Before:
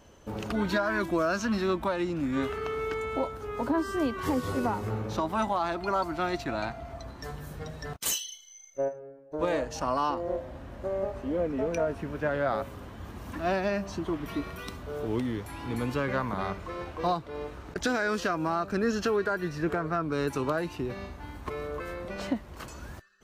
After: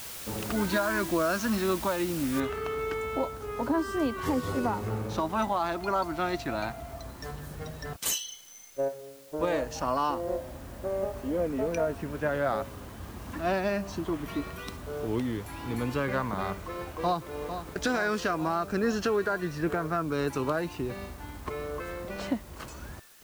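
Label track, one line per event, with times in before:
2.400000	2.400000	noise floor step -41 dB -56 dB
16.760000	17.580000	echo throw 0.45 s, feedback 70%, level -9.5 dB

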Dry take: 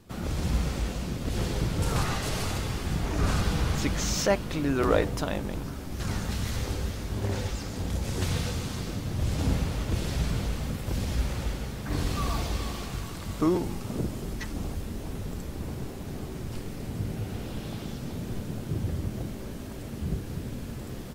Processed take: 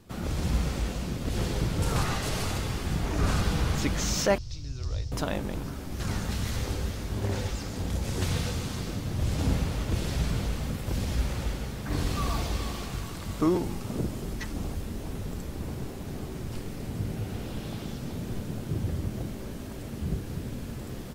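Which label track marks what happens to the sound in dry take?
4.380000	5.120000	EQ curve 120 Hz 0 dB, 180 Hz -23 dB, 1600 Hz -24 dB, 3200 Hz -12 dB, 5400 Hz +5 dB, 11000 Hz -24 dB

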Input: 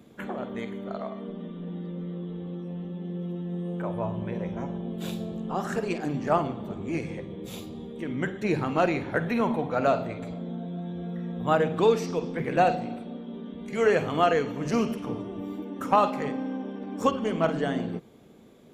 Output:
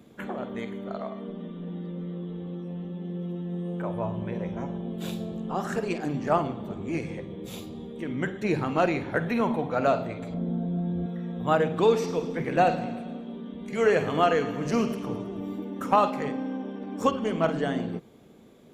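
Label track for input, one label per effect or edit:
10.340000	11.060000	tilt -2.5 dB/oct
11.760000	15.950000	feedback echo 0.107 s, feedback 60%, level -14.5 dB

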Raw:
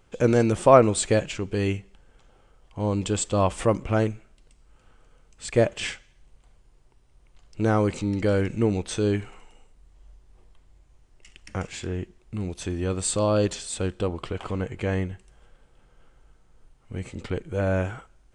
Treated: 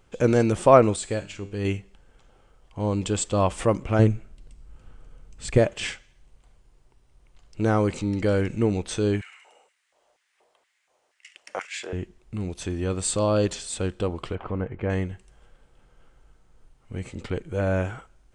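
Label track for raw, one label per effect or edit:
0.960000	1.650000	resonator 100 Hz, decay 0.6 s
3.990000	5.580000	low shelf 290 Hz +10.5 dB
9.210000	11.930000	LFO high-pass square 2.1 Hz 590–1900 Hz
14.350000	14.900000	LPF 1700 Hz

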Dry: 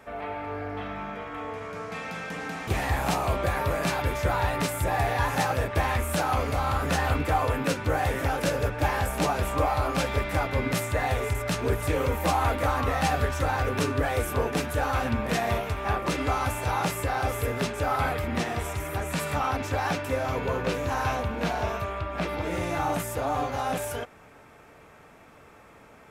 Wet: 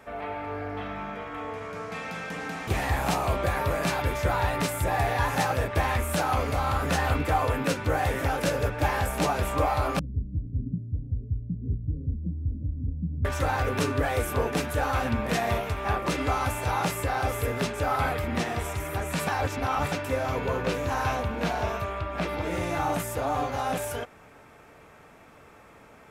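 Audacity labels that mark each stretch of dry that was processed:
9.990000	13.250000	inverse Chebyshev low-pass stop band from 790 Hz, stop band 60 dB
19.270000	19.920000	reverse

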